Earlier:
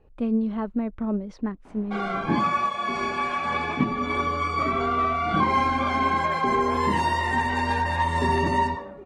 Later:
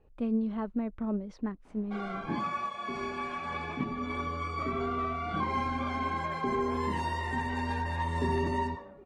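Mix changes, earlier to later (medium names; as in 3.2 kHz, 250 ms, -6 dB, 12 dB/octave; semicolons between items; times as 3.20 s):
speech -5.5 dB; first sound -10.0 dB; second sound -4.5 dB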